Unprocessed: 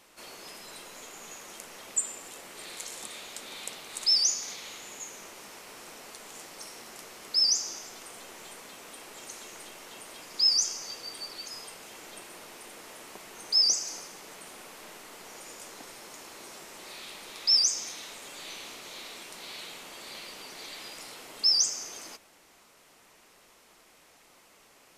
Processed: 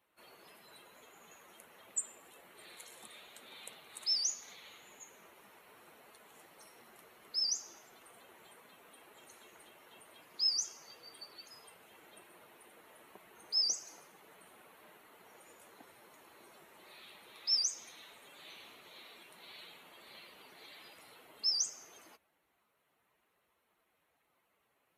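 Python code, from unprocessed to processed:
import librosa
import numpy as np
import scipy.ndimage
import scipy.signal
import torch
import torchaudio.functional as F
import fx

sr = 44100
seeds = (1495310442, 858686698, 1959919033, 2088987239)

y = fx.bin_expand(x, sr, power=1.5)
y = scipy.signal.sosfilt(scipy.signal.butter(2, 59.0, 'highpass', fs=sr, output='sos'), y)
y = F.gain(torch.from_numpy(y), -7.0).numpy()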